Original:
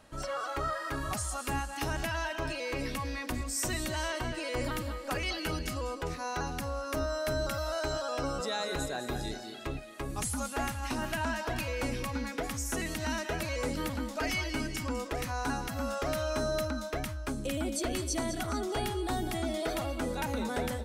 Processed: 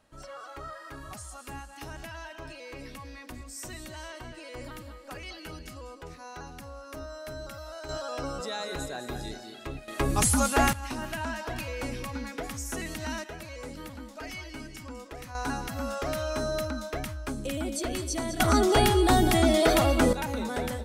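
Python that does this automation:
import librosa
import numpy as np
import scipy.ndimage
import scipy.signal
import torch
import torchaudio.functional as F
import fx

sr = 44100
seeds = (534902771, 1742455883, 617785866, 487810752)

y = fx.gain(x, sr, db=fx.steps((0.0, -8.0), (7.89, -1.0), (9.88, 10.5), (10.73, -1.0), (13.24, -7.5), (15.35, 1.0), (18.4, 11.5), (20.13, 1.5)))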